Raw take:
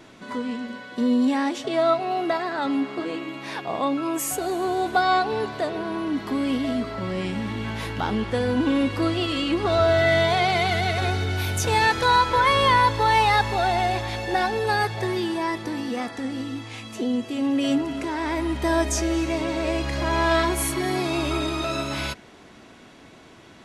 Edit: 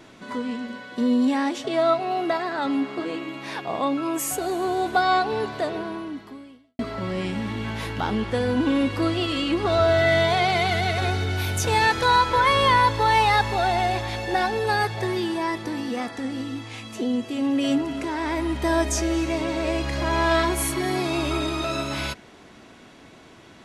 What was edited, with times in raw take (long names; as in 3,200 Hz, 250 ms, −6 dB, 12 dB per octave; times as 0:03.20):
0:05.75–0:06.79: fade out quadratic